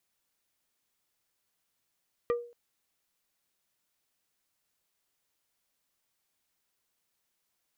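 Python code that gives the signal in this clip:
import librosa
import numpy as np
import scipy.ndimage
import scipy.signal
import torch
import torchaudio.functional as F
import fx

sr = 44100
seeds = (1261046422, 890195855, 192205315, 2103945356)

y = fx.strike_wood(sr, length_s=0.23, level_db=-22.5, body='plate', hz=477.0, decay_s=0.42, tilt_db=7.0, modes=5)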